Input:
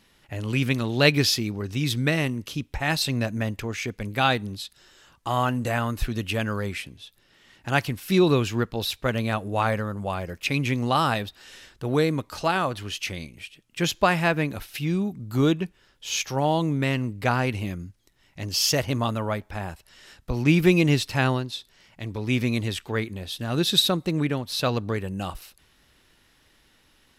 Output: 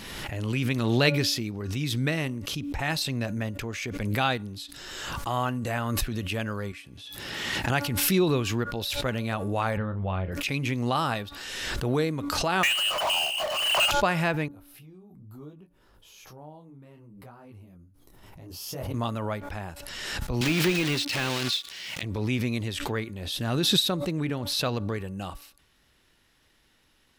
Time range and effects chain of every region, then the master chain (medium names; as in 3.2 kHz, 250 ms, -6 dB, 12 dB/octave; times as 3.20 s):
6.72–7.70 s: high-pass 52 Hz + feedback comb 840 Hz, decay 0.19 s
9.77–10.32 s: steep low-pass 3.8 kHz 48 dB/octave + bass shelf 120 Hz +11 dB + doubling 32 ms -9 dB
12.63–13.91 s: frequency inversion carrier 3 kHz + steep high-pass 580 Hz 96 dB/octave + power-law waveshaper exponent 0.35
14.48–18.94 s: high-order bell 3.6 kHz -10.5 dB 2.6 oct + compression 2.5:1, threshold -45 dBFS + detune thickener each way 23 cents
20.41–22.03 s: block-companded coder 3-bit + frequency weighting D + de-esser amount 45%
whole clip: de-hum 286 Hz, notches 5; swell ahead of each attack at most 29 dB/s; trim -4.5 dB